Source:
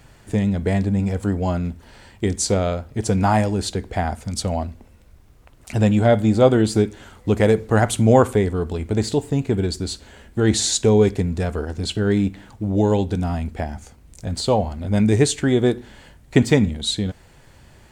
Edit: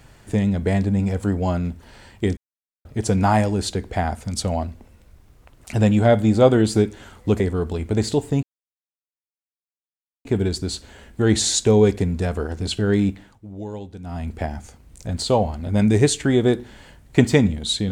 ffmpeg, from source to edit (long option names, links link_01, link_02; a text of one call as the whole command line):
ffmpeg -i in.wav -filter_complex "[0:a]asplit=7[link_01][link_02][link_03][link_04][link_05][link_06][link_07];[link_01]atrim=end=2.37,asetpts=PTS-STARTPTS,afade=type=out:start_time=2.366:duration=0.004:curve=hsin[link_08];[link_02]atrim=start=2.37:end=2.85,asetpts=PTS-STARTPTS,volume=0[link_09];[link_03]atrim=start=2.85:end=7.402,asetpts=PTS-STARTPTS,afade=type=in:duration=0.004:curve=hsin[link_10];[link_04]atrim=start=8.398:end=9.43,asetpts=PTS-STARTPTS,afade=type=out:start_time=1.028:duration=0.004:curve=hsin,apad=pad_dur=1.82[link_11];[link_05]atrim=start=9.43:end=12.58,asetpts=PTS-STARTPTS,afade=type=in:duration=0.004:curve=hsin,afade=type=out:start_time=2.82:duration=0.33:silence=0.188365[link_12];[link_06]atrim=start=12.58:end=13.2,asetpts=PTS-STARTPTS,volume=-14.5dB[link_13];[link_07]atrim=start=13.2,asetpts=PTS-STARTPTS,afade=type=in:duration=0.33:silence=0.188365[link_14];[link_08][link_09][link_10]concat=n=3:v=0:a=1[link_15];[link_11][link_12][link_13][link_14]concat=n=4:v=0:a=1[link_16];[link_15][link_16]acrossfade=duration=0.004:curve1=hsin:curve2=hsin" out.wav